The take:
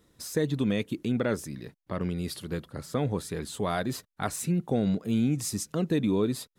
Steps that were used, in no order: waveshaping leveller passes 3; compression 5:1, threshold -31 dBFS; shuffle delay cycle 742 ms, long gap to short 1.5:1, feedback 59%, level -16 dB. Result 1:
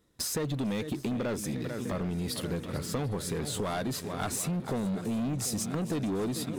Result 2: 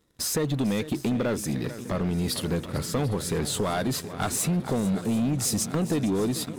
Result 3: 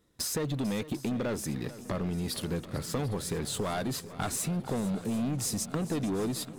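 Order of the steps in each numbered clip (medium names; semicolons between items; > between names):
shuffle delay > waveshaping leveller > compression; compression > shuffle delay > waveshaping leveller; waveshaping leveller > compression > shuffle delay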